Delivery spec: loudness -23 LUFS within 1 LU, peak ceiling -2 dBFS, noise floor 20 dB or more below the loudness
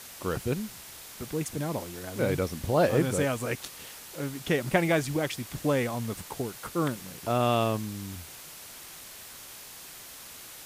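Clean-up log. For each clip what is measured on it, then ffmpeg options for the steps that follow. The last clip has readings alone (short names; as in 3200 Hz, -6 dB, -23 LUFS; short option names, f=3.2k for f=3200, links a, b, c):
noise floor -46 dBFS; noise floor target -50 dBFS; loudness -29.5 LUFS; peak -10.0 dBFS; loudness target -23.0 LUFS
-> -af "afftdn=nr=6:nf=-46"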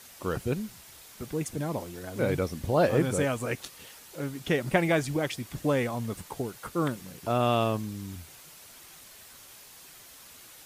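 noise floor -51 dBFS; loudness -29.5 LUFS; peak -10.0 dBFS; loudness target -23.0 LUFS
-> -af "volume=6.5dB"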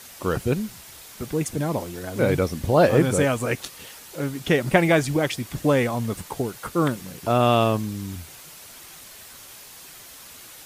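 loudness -23.0 LUFS; peak -3.5 dBFS; noise floor -44 dBFS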